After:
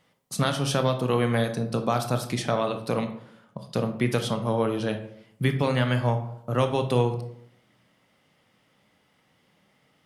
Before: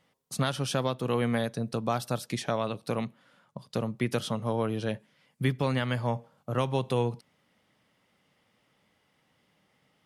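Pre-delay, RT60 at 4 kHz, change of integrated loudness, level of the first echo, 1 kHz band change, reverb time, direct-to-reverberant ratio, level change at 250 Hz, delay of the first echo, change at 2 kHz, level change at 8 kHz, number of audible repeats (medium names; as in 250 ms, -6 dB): 20 ms, 0.40 s, +4.5 dB, no echo, +4.5 dB, 0.70 s, 6.5 dB, +4.0 dB, no echo, +4.5 dB, +4.0 dB, no echo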